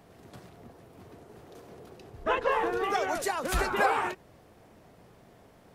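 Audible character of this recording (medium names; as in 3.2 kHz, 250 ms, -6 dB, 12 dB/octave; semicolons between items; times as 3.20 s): noise floor -57 dBFS; spectral tilt -3.5 dB/octave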